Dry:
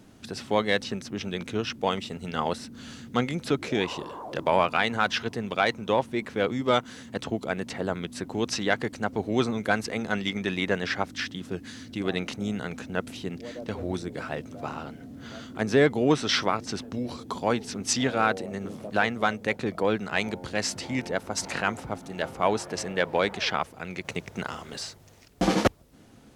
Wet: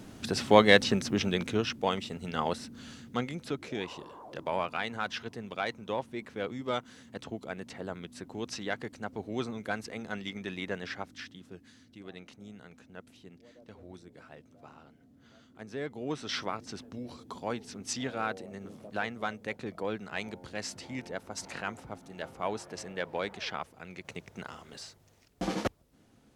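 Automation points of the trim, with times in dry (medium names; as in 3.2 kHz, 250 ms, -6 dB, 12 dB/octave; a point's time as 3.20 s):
1.12 s +5 dB
1.84 s -3 dB
2.66 s -3 dB
3.57 s -9.5 dB
10.82 s -9.5 dB
12.03 s -18 dB
15.75 s -18 dB
16.38 s -9.5 dB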